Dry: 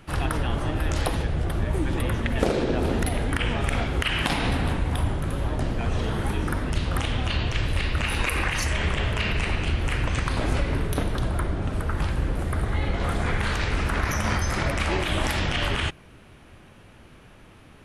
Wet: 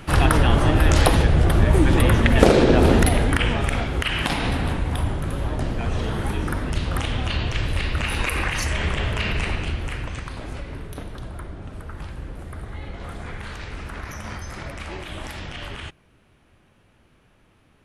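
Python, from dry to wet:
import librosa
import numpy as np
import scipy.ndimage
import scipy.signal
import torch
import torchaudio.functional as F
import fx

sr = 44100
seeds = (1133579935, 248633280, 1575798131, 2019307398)

y = fx.gain(x, sr, db=fx.line((2.93, 9.0), (3.82, 1.0), (9.45, 1.0), (10.43, -9.0)))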